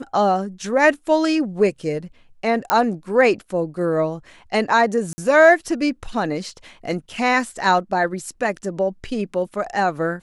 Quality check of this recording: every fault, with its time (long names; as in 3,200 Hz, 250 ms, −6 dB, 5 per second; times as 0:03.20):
0:02.70: click −1 dBFS
0:05.13–0:05.18: drop-out 50 ms